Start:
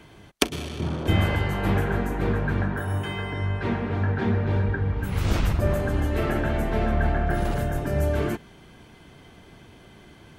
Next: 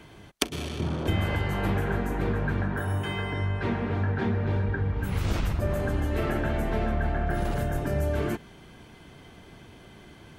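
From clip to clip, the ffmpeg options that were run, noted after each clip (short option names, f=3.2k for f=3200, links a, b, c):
-af "acompressor=threshold=-24dB:ratio=2.5"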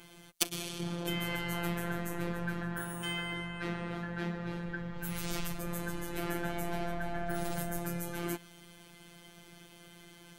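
-af "asoftclip=type=tanh:threshold=-15dB,crystalizer=i=3:c=0,afftfilt=real='hypot(re,im)*cos(PI*b)':imag='0':win_size=1024:overlap=0.75,volume=-4dB"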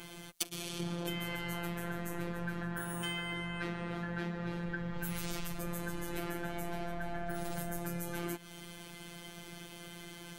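-af "acompressor=threshold=-39dB:ratio=6,volume=6dB"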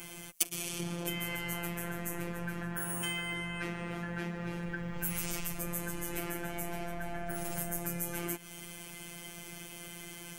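-af "aexciter=amount=1.3:drive=5:freq=2.1k"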